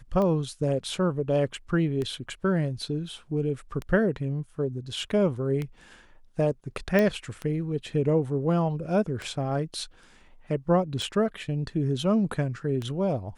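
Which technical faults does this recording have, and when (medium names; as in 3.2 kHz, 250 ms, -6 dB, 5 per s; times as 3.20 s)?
tick 33 1/3 rpm -19 dBFS
6.99 s: pop -12 dBFS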